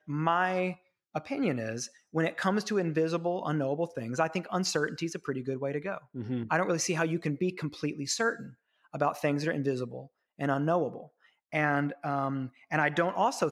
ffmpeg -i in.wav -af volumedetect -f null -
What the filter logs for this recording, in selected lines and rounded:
mean_volume: -31.0 dB
max_volume: -12.1 dB